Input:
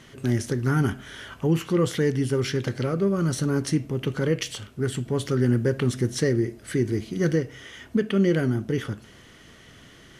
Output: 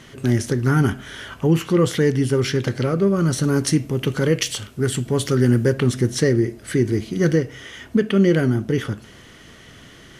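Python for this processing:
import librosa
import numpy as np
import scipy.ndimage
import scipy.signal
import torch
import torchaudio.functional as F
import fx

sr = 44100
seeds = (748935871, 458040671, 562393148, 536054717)

y = fx.high_shelf(x, sr, hz=4300.0, db=6.0, at=(3.44, 5.73))
y = F.gain(torch.from_numpy(y), 5.0).numpy()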